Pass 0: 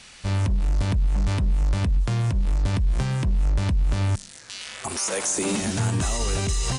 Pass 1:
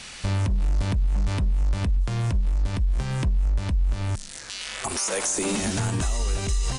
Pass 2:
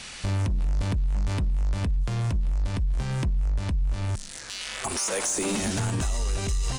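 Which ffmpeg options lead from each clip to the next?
-af "asubboost=boost=4:cutoff=51,acompressor=threshold=0.0251:ratio=2,alimiter=limit=0.075:level=0:latency=1:release=499,volume=2.11"
-af "asoftclip=type=tanh:threshold=0.112"

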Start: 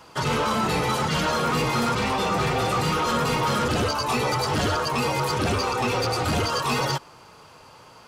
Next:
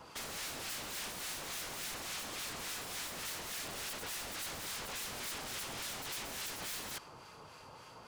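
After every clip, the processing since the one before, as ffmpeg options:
-filter_complex "[0:a]aeval=exprs='0.0251*(abs(mod(val(0)/0.0251+3,4)-2)-1)':c=same,acrossover=split=1200[s0][s1];[s0]aeval=exprs='val(0)*(1-0.5/2+0.5/2*cos(2*PI*3.5*n/s))':c=same[s2];[s1]aeval=exprs='val(0)*(1-0.5/2-0.5/2*cos(2*PI*3.5*n/s))':c=same[s3];[s2][s3]amix=inputs=2:normalize=0,volume=0.708"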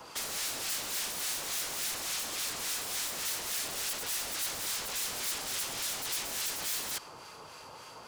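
-filter_complex "[0:a]bass=f=250:g=-6,treble=f=4000:g=4,acrossover=split=170|3000[s0][s1][s2];[s1]acompressor=threshold=0.00562:ratio=6[s3];[s0][s3][s2]amix=inputs=3:normalize=0,volume=1.78"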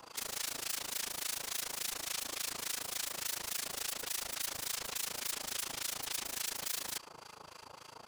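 -af "tremolo=f=27:d=0.947"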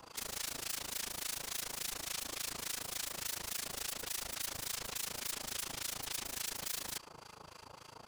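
-af "lowshelf=f=200:g=8,volume=0.794"

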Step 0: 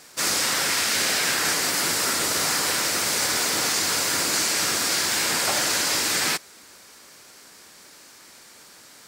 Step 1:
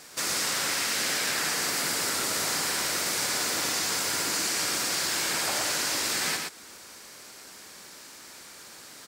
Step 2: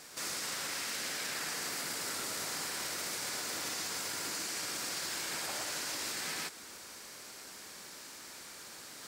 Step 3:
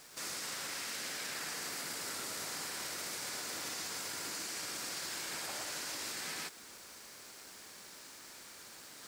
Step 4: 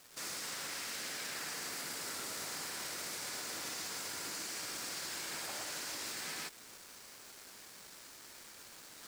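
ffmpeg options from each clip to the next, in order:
-filter_complex "[0:a]acompressor=threshold=0.0251:ratio=2,asplit=2[s0][s1];[s1]aecho=0:1:117:0.668[s2];[s0][s2]amix=inputs=2:normalize=0"
-af "areverse,acompressor=mode=upward:threshold=0.00891:ratio=2.5,areverse,alimiter=level_in=1.19:limit=0.0631:level=0:latency=1:release=28,volume=0.841,volume=0.668"
-af "aeval=exprs='val(0)*gte(abs(val(0)),0.00237)':c=same,volume=0.708"
-af "acrusher=bits=7:mix=0:aa=0.5,volume=0.891"

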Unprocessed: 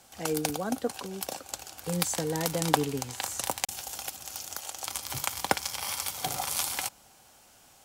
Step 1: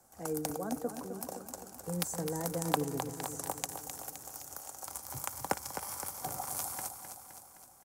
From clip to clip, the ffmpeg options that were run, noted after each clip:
-filter_complex "[0:a]acrossover=split=220|1700|5700[s0][s1][s2][s3];[s2]acrusher=bits=2:mix=0:aa=0.5[s4];[s0][s1][s4][s3]amix=inputs=4:normalize=0,aecho=1:1:259|518|777|1036|1295|1554|1813:0.376|0.222|0.131|0.0772|0.0455|0.0269|0.0159,volume=0.531"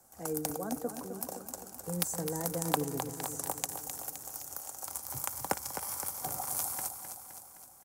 -af "crystalizer=i=0.5:c=0"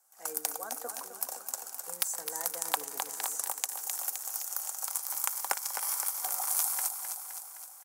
-af "highpass=1000,dynaudnorm=f=140:g=3:m=4.47,volume=0.501"

